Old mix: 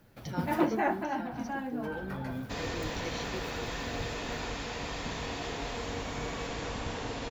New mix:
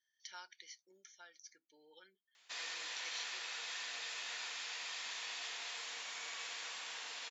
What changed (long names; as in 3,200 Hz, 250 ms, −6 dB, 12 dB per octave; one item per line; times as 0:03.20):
first sound: muted
master: add Bessel high-pass filter 2,300 Hz, order 2